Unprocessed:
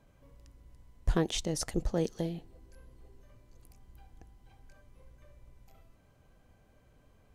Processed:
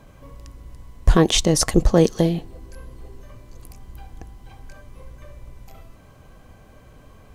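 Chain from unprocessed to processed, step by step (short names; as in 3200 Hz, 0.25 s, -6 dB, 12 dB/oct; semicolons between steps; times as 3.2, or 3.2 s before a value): small resonant body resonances 1100 Hz, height 11 dB, ringing for 85 ms; maximiser +16.5 dB; gain -1 dB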